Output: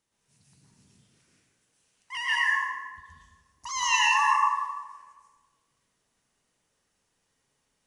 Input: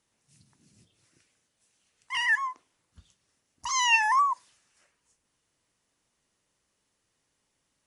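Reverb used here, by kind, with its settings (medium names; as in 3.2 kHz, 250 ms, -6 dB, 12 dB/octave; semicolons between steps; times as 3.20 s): plate-style reverb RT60 1.3 s, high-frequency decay 0.65×, pre-delay 105 ms, DRR -6 dB; trim -5 dB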